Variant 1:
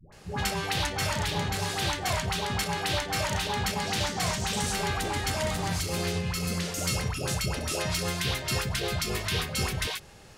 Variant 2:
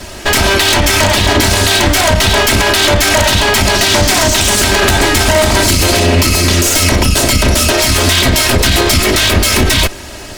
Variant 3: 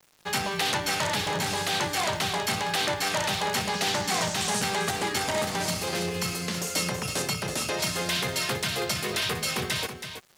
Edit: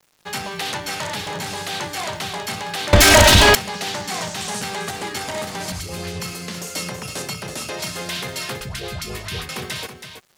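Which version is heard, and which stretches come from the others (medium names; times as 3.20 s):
3
2.93–3.55 s: from 2
5.72–6.20 s: from 1
8.61–9.49 s: from 1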